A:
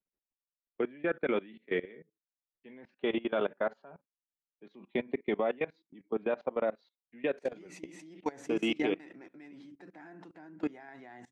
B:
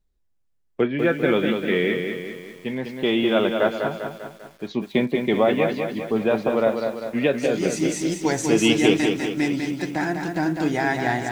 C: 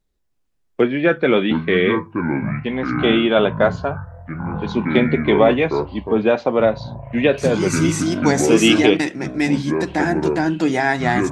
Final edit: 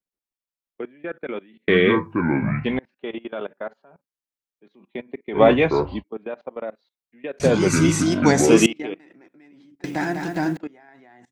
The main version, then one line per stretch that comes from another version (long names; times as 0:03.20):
A
0:01.68–0:02.79: punch in from C
0:05.38–0:05.99: punch in from C, crossfade 0.10 s
0:07.40–0:08.66: punch in from C
0:09.84–0:10.57: punch in from B